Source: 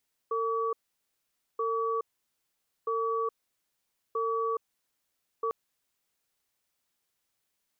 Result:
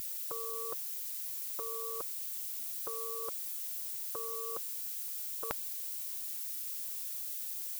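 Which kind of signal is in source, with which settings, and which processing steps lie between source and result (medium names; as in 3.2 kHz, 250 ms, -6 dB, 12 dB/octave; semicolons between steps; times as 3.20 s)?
cadence 453 Hz, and 1.14 kHz, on 0.42 s, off 0.86 s, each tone -29.5 dBFS 5.20 s
added noise violet -56 dBFS; graphic EQ 250/500/1000 Hz -9/+11/-5 dB; spectrum-flattening compressor 4:1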